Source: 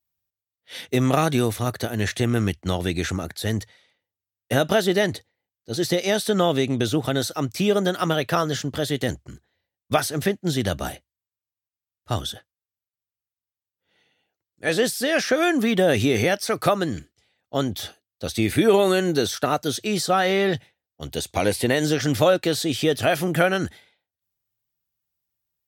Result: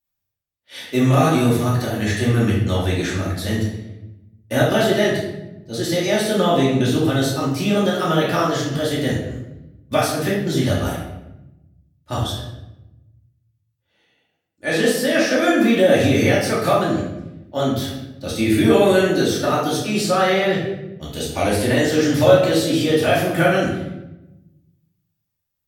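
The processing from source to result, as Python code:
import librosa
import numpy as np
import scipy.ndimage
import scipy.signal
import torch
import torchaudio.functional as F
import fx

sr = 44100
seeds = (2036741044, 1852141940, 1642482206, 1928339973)

y = fx.room_shoebox(x, sr, seeds[0], volume_m3=350.0, walls='mixed', distance_m=2.5)
y = y * 10.0 ** (-4.0 / 20.0)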